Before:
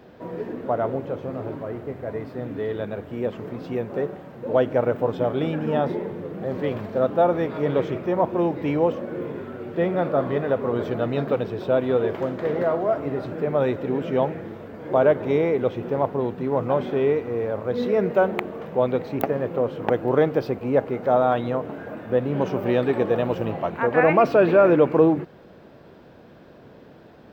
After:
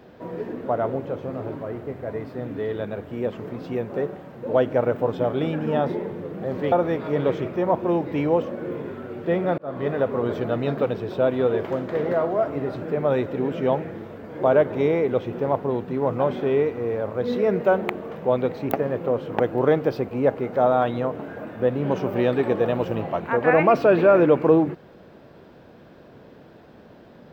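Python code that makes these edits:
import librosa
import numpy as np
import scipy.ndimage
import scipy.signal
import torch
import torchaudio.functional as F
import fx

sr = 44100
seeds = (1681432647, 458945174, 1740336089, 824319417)

y = fx.edit(x, sr, fx.cut(start_s=6.72, length_s=0.5),
    fx.fade_in_span(start_s=10.08, length_s=0.32), tone=tone)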